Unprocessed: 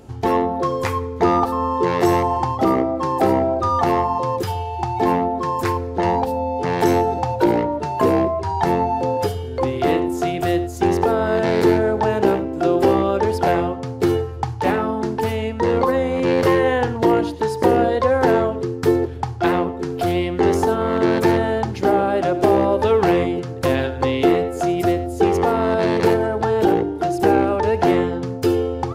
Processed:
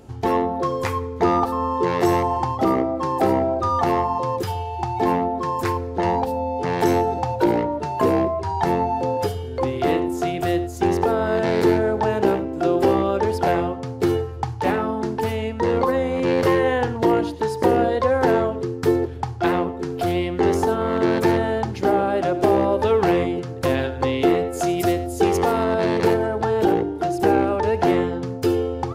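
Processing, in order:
0:24.53–0:25.64: high-shelf EQ 3,500 Hz +8.5 dB
level −2 dB

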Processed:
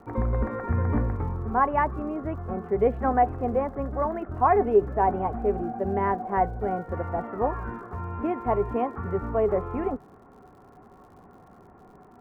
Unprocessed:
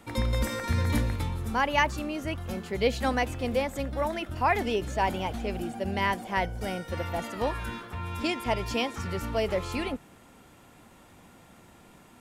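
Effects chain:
inverse Chebyshev low-pass filter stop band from 4,900 Hz, stop band 60 dB
surface crackle 86 per second −53 dBFS
hollow resonant body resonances 410/740/1,100 Hz, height 12 dB, ringing for 95 ms
level +1.5 dB

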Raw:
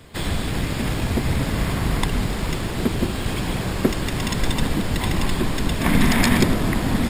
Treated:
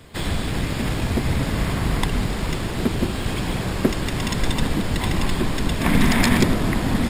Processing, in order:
highs frequency-modulated by the lows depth 0.1 ms

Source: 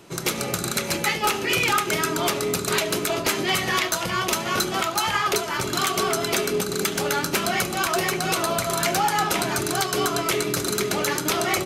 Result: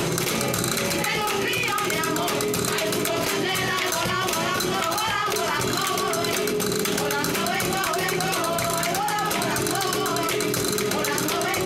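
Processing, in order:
on a send: backwards echo 56 ms −14 dB
on the sum: envelope flattener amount 100%
level −5.5 dB

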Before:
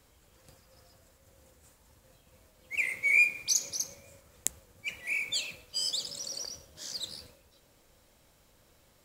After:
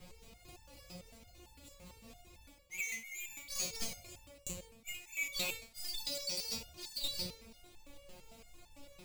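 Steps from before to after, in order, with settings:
running median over 15 samples
high shelf with overshoot 2,000 Hz +6.5 dB, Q 3
in parallel at −2 dB: brickwall limiter −21.5 dBFS, peak gain reduction 11.5 dB
on the sum: bass and treble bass +6 dB, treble +6 dB
reversed playback
downward compressor 20 to 1, threshold −36 dBFS, peak gain reduction 24.5 dB
reversed playback
step-sequenced resonator 8.9 Hz 180–890 Hz
level +16 dB

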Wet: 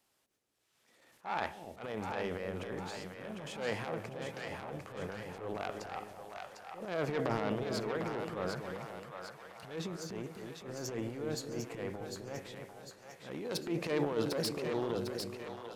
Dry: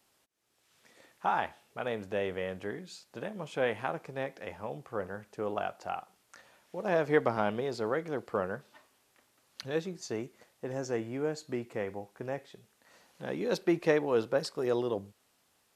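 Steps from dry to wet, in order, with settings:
phase distortion by the signal itself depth 0.18 ms
transient designer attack −10 dB, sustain +10 dB
echo with a time of its own for lows and highs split 600 Hz, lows 256 ms, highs 751 ms, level −5 dB
level −5.5 dB

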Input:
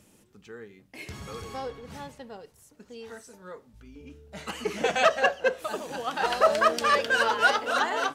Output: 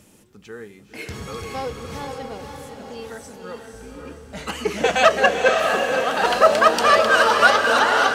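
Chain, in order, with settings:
feedback delay with all-pass diffusion 533 ms, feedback 47%, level −4 dB
level +6.5 dB

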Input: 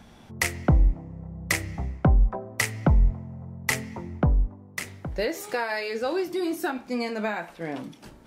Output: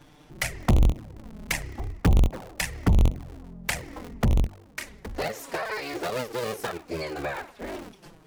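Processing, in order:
sub-harmonics by changed cycles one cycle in 3, inverted
flanger swept by the level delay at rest 7.3 ms, full sweep at −16.5 dBFS

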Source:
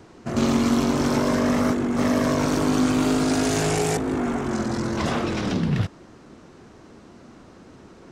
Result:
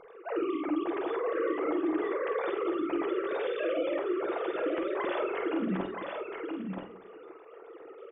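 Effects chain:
three sine waves on the formant tracks
downward compressor, threshold −27 dBFS, peak gain reduction 11.5 dB
double-tracking delay 48 ms −7 dB
on a send: single-tap delay 974 ms −5 dB
on the sum: rectangular room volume 650 cubic metres, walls furnished, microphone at 0.72 metres
level −4 dB

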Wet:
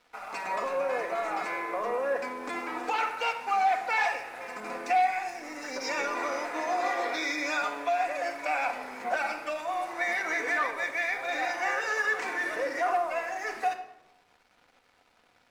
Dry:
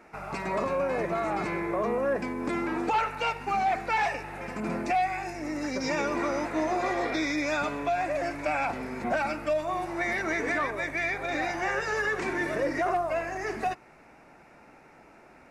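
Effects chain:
high-pass filter 580 Hz 12 dB per octave
dead-zone distortion −55 dBFS
rectangular room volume 3,300 cubic metres, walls furnished, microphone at 1.9 metres

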